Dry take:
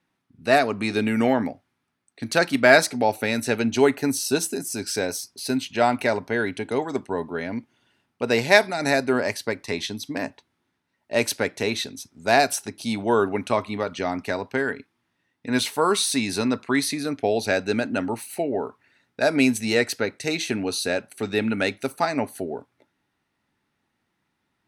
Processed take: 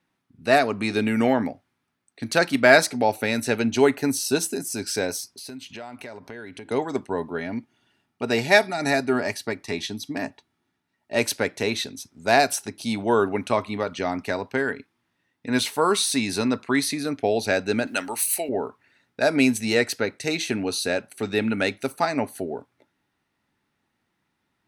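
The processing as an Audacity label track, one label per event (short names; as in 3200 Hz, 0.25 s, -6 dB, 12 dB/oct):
5.310000	6.710000	compressor 5:1, threshold -36 dBFS
7.380000	11.180000	notch comb 520 Hz
17.870000	18.490000	tilt +4.5 dB/oct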